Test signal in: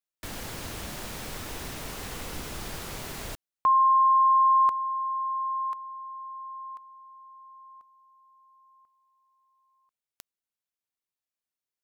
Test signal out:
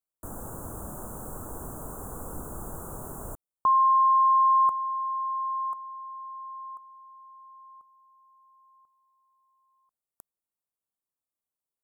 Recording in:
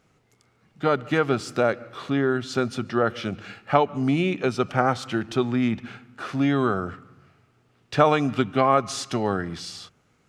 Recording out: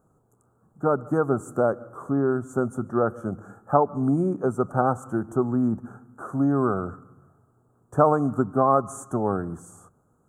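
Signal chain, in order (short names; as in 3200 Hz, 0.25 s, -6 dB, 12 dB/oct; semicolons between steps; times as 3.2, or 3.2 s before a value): inverse Chebyshev band-stop 2000–5200 Hz, stop band 40 dB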